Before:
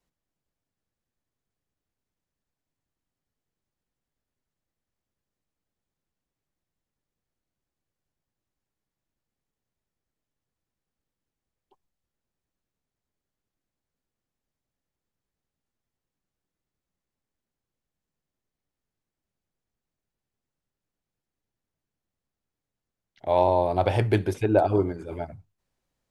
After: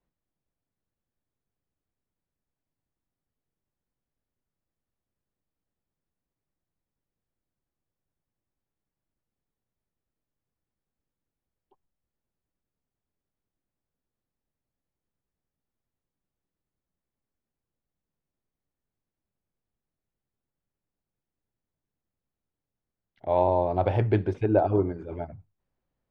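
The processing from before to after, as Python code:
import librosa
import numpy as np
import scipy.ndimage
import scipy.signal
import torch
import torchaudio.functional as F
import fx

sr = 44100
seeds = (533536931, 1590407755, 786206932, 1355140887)

y = fx.spacing_loss(x, sr, db_at_10k=29)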